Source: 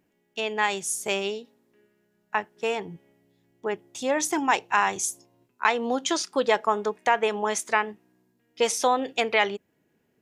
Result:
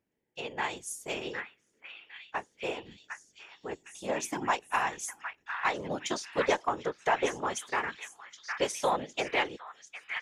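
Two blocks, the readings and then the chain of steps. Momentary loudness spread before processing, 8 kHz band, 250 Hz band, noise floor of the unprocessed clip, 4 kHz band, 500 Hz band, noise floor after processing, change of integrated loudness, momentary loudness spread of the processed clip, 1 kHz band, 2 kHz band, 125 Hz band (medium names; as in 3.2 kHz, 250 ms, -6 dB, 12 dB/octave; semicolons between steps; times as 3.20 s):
10 LU, -9.0 dB, -7.5 dB, -71 dBFS, -7.0 dB, -7.0 dB, -73 dBFS, -7.0 dB, 17 LU, -6.5 dB, -6.0 dB, -0.5 dB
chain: repeats whose band climbs or falls 758 ms, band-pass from 1.7 kHz, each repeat 0.7 oct, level -1.5 dB; whisper effect; in parallel at -8.5 dB: one-sided clip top -21 dBFS; on the sum: upward expansion 1.5:1, over -30 dBFS; trim -7.5 dB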